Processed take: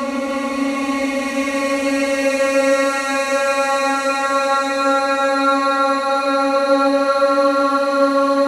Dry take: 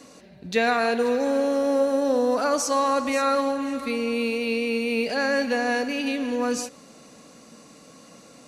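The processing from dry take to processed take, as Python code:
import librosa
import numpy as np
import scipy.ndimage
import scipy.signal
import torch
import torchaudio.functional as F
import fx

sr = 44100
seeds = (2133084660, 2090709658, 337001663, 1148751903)

y = fx.paulstretch(x, sr, seeds[0], factor=23.0, window_s=0.25, from_s=3.04)
y = fx.echo_alternate(y, sr, ms=151, hz=1100.0, feedback_pct=79, wet_db=-5.0)
y = fx.rev_spring(y, sr, rt60_s=3.7, pass_ms=(35, 54), chirp_ms=55, drr_db=5.0)
y = y * 10.0 ** (3.0 / 20.0)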